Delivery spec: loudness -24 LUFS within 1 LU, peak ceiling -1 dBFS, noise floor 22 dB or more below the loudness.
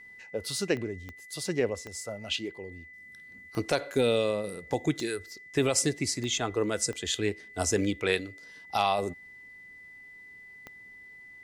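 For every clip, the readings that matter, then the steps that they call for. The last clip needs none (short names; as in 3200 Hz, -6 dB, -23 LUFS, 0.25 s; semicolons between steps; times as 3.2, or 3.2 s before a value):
clicks 8; steady tone 2000 Hz; tone level -47 dBFS; loudness -30.0 LUFS; peak -11.5 dBFS; loudness target -24.0 LUFS
-> de-click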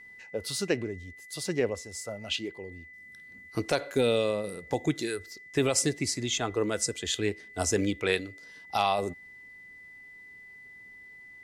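clicks 0; steady tone 2000 Hz; tone level -47 dBFS
-> notch 2000 Hz, Q 30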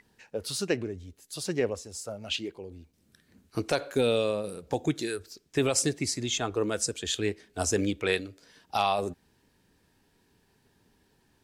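steady tone none; loudness -30.0 LUFS; peak -12.0 dBFS; loudness target -24.0 LUFS
-> gain +6 dB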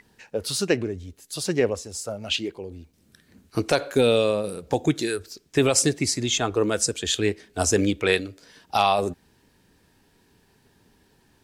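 loudness -24.0 LUFS; peak -6.0 dBFS; noise floor -62 dBFS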